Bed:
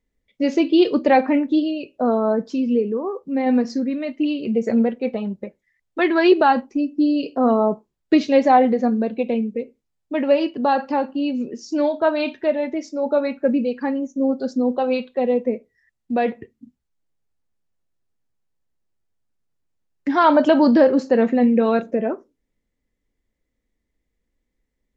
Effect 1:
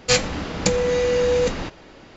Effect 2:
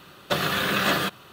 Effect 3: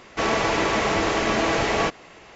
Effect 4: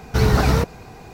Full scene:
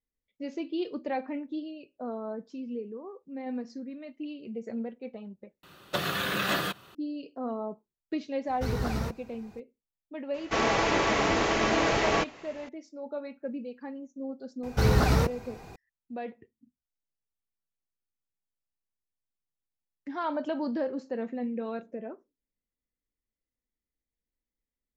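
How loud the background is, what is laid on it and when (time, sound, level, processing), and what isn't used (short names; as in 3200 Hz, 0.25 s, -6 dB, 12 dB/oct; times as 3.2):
bed -17 dB
5.63 replace with 2 -5.5 dB
8.47 add 4 -14.5 dB
10.34 add 3 -3.5 dB + downsampling 16000 Hz
14.63 add 4 -6 dB
not used: 1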